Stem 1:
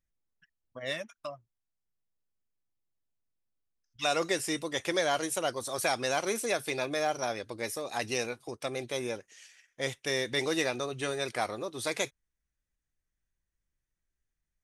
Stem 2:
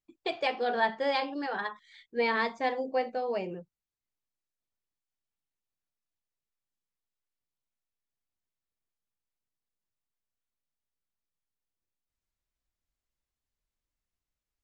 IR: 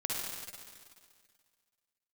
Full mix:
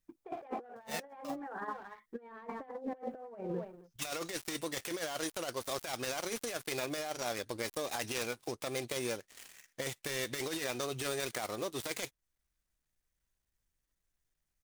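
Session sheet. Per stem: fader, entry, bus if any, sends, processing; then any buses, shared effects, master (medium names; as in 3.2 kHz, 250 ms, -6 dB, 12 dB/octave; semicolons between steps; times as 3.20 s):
-2.5 dB, 0.00 s, no send, no echo send, dead-time distortion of 0.11 ms; compression 2:1, threshold -43 dBFS, peak gain reduction 10.5 dB
-3.5 dB, 0.00 s, no send, echo send -17.5 dB, low-pass 1.5 kHz 24 dB/octave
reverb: none
echo: delay 266 ms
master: treble shelf 3.6 kHz +8 dB; waveshaping leveller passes 1; compressor with a negative ratio -38 dBFS, ratio -0.5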